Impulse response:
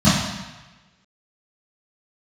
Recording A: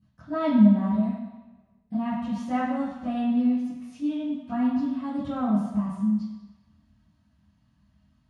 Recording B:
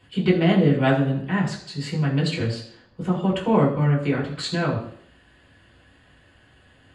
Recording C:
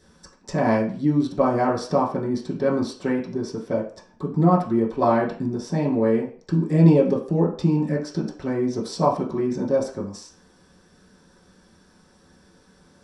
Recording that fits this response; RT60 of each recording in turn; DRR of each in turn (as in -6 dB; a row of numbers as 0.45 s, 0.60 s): A; 1.1 s, 0.60 s, 0.45 s; -14.0 dB, -5.5 dB, -6.0 dB